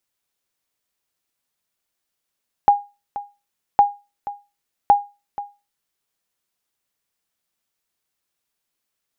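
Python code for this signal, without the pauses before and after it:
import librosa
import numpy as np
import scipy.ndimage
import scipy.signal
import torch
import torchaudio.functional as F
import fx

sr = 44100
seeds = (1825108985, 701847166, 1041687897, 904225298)

y = fx.sonar_ping(sr, hz=815.0, decay_s=0.27, every_s=1.11, pings=3, echo_s=0.48, echo_db=-16.0, level_db=-4.5)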